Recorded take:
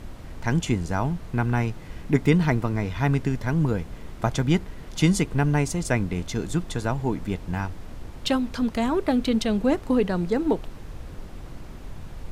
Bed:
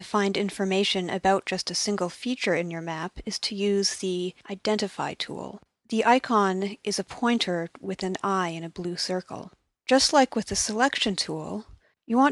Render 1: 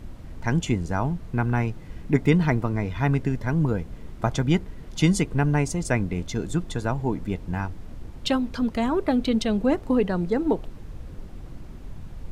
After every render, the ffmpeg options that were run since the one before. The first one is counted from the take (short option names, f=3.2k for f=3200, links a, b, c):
-af "afftdn=nr=6:nf=-40"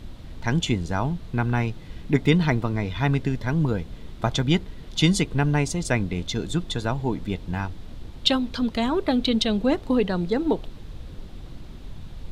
-af "equalizer=f=3.7k:w=1.8:g=10.5"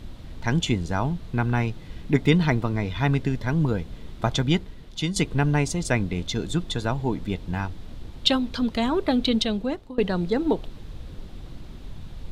-filter_complex "[0:a]asplit=3[a][b][c];[a]atrim=end=5.16,asetpts=PTS-STARTPTS,afade=t=out:st=4.41:d=0.75:silence=0.316228[d];[b]atrim=start=5.16:end=9.98,asetpts=PTS-STARTPTS,afade=t=in:d=0.004:c=hsin:silence=0.316228,afade=t=out:st=4.18:d=0.64:silence=0.0794328[e];[c]atrim=start=9.98,asetpts=PTS-STARTPTS,afade=t=in:d=0.004:c=hsin:silence=0.0794328[f];[d][e][f]concat=n=3:v=0:a=1"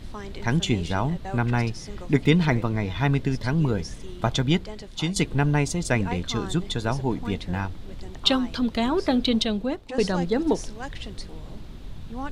-filter_complex "[1:a]volume=-14.5dB[a];[0:a][a]amix=inputs=2:normalize=0"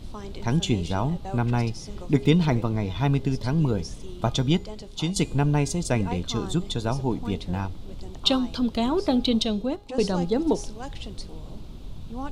-af "equalizer=f=1.8k:w=2.1:g=-10,bandreject=f=409.2:t=h:w=4,bandreject=f=818.4:t=h:w=4,bandreject=f=1.2276k:t=h:w=4,bandreject=f=1.6368k:t=h:w=4,bandreject=f=2.046k:t=h:w=4,bandreject=f=2.4552k:t=h:w=4,bandreject=f=2.8644k:t=h:w=4,bandreject=f=3.2736k:t=h:w=4,bandreject=f=3.6828k:t=h:w=4,bandreject=f=4.092k:t=h:w=4,bandreject=f=4.5012k:t=h:w=4,bandreject=f=4.9104k:t=h:w=4,bandreject=f=5.3196k:t=h:w=4,bandreject=f=5.7288k:t=h:w=4,bandreject=f=6.138k:t=h:w=4,bandreject=f=6.5472k:t=h:w=4,bandreject=f=6.9564k:t=h:w=4,bandreject=f=7.3656k:t=h:w=4,bandreject=f=7.7748k:t=h:w=4,bandreject=f=8.184k:t=h:w=4,bandreject=f=8.5932k:t=h:w=4,bandreject=f=9.0024k:t=h:w=4,bandreject=f=9.4116k:t=h:w=4,bandreject=f=9.8208k:t=h:w=4,bandreject=f=10.23k:t=h:w=4,bandreject=f=10.6392k:t=h:w=4,bandreject=f=11.0484k:t=h:w=4,bandreject=f=11.4576k:t=h:w=4,bandreject=f=11.8668k:t=h:w=4,bandreject=f=12.276k:t=h:w=4,bandreject=f=12.6852k:t=h:w=4"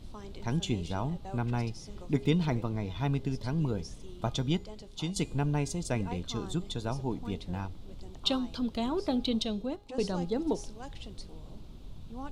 -af "volume=-7.5dB"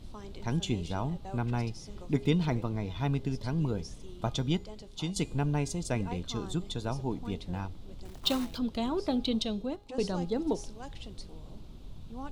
-filter_complex "[0:a]asettb=1/sr,asplit=3[a][b][c];[a]atrim=end=8.054[d];[b]atrim=start=8.05:end=8.58,asetpts=PTS-STARTPTS,afade=t=in:d=0.004:c=qsin,afade=t=out:st=0.526:d=0.004:c=qsin,acrusher=bits=3:mode=log:mix=0:aa=0.000001[e];[c]atrim=start=8.576[f];[d][e]acrossfade=d=0.004:c1=hsin:c2=qsin[g];[g][f]acrossfade=d=0.004:c1=qsin:c2=hsin"